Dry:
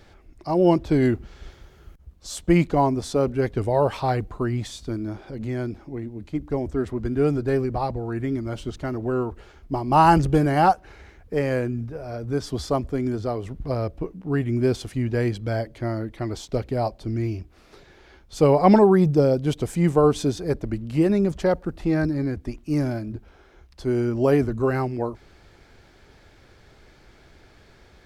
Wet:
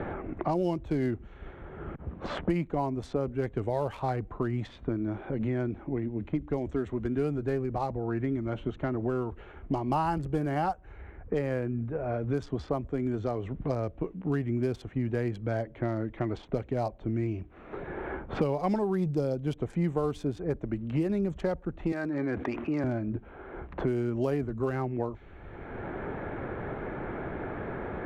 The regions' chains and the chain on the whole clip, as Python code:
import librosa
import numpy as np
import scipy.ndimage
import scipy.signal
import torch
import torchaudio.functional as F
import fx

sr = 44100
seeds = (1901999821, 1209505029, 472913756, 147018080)

y = fx.chain(x, sr, fx.weighting(curve='A'),
    fx.env_flatten(amount_pct=70), at=(21.92, 22.84))
y = fx.wiener(y, sr, points=9)
y = fx.env_lowpass(y, sr, base_hz=1400.0, full_db=-19.5)
y = fx.band_squash(y, sr, depth_pct=100)
y = F.gain(torch.from_numpy(y), -7.5).numpy()